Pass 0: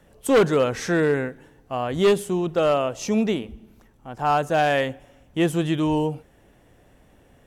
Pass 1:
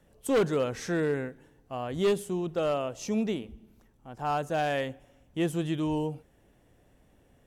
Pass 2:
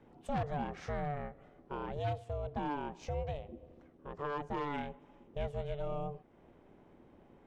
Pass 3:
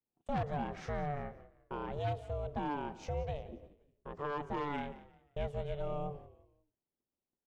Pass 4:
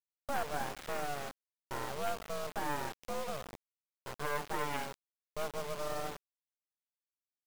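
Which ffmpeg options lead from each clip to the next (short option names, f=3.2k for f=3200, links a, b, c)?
-af "equalizer=f=1.4k:t=o:w=2.7:g=-3,volume=-6.5dB"
-af "acompressor=threshold=-45dB:ratio=2,aeval=exprs='val(0)*sin(2*PI*290*n/s)':c=same,adynamicsmooth=sensitivity=3:basefreq=2.9k,volume=5dB"
-filter_complex "[0:a]agate=range=-37dB:threshold=-53dB:ratio=16:detection=peak,asplit=4[a][b][c][d];[b]adelay=176,afreqshift=-43,volume=-17dB[e];[c]adelay=352,afreqshift=-86,volume=-26.4dB[f];[d]adelay=528,afreqshift=-129,volume=-35.7dB[g];[a][e][f][g]amix=inputs=4:normalize=0"
-af "afftdn=nr=27:nf=-50,highpass=410,acrusher=bits=5:dc=4:mix=0:aa=0.000001,volume=6.5dB"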